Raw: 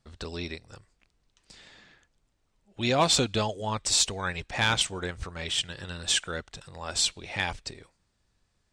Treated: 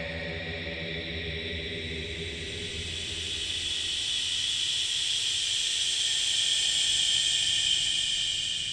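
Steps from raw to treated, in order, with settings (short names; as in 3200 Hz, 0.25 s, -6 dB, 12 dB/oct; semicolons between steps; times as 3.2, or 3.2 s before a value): de-hum 91.72 Hz, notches 6; Paulstretch 45×, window 0.10 s, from 5.43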